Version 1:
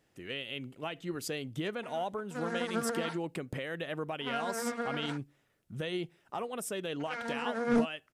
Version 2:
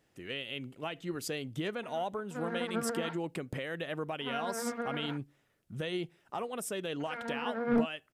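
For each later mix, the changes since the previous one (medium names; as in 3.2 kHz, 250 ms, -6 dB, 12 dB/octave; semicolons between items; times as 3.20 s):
background: add distance through air 360 m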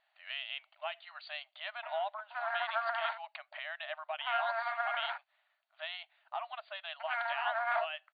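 background +7.5 dB; master: add brick-wall FIR band-pass 590–4700 Hz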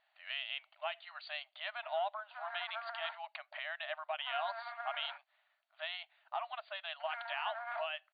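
background -9.5 dB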